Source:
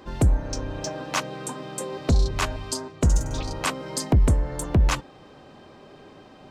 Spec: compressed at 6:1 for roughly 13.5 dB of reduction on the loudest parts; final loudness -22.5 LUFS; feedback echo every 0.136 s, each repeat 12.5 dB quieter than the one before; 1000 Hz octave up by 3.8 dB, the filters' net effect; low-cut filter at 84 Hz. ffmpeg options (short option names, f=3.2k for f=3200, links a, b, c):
-af "highpass=84,equalizer=f=1k:t=o:g=4.5,acompressor=threshold=-31dB:ratio=6,aecho=1:1:136|272|408:0.237|0.0569|0.0137,volume=13dB"